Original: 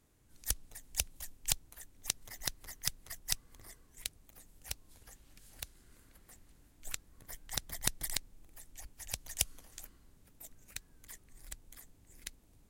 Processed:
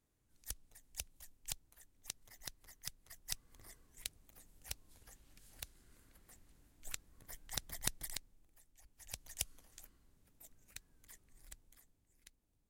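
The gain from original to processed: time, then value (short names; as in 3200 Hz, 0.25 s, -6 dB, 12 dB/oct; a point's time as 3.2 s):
3.04 s -11 dB
3.64 s -4 dB
7.82 s -4 dB
8.78 s -16 dB
9.12 s -7.5 dB
11.48 s -7.5 dB
12.15 s -16.5 dB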